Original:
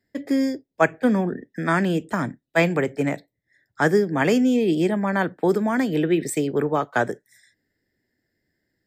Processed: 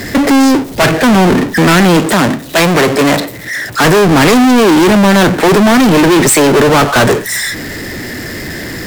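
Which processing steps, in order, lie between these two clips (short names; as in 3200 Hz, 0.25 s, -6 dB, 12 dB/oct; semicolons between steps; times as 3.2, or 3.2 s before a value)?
power-law curve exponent 0.35; sine folder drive 5 dB, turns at -4.5 dBFS; 2–3.84 low shelf 130 Hz -11 dB; gain -1 dB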